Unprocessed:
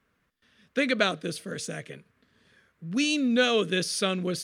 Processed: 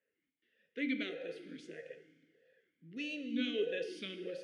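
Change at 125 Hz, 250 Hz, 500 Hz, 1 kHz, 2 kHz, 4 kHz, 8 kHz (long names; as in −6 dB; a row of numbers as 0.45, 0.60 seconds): −22.0, −11.5, −11.5, −28.0, −14.0, −15.0, −28.5 decibels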